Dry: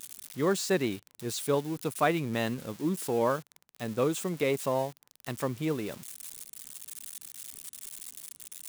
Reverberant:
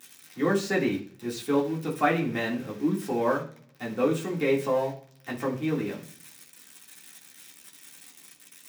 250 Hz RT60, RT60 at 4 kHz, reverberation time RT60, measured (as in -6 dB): 0.75 s, 0.60 s, 0.45 s